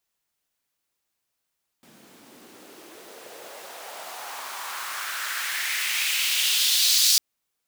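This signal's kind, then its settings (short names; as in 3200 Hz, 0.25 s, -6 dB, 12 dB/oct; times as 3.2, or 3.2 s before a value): swept filtered noise pink, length 5.35 s highpass, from 190 Hz, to 4800 Hz, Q 2.3, exponential, gain ramp +38 dB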